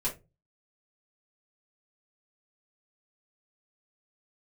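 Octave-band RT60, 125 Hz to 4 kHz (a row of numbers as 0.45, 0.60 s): 0.50, 0.35, 0.30, 0.20, 0.20, 0.15 s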